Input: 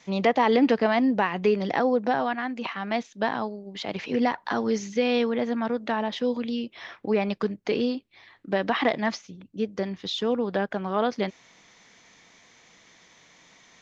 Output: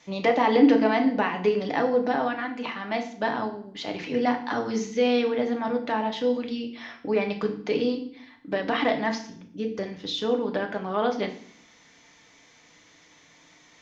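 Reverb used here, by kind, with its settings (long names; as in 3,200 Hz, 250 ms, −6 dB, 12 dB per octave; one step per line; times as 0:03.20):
feedback delay network reverb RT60 0.55 s, low-frequency decay 1.5×, high-frequency decay 0.95×, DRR 3 dB
level −2 dB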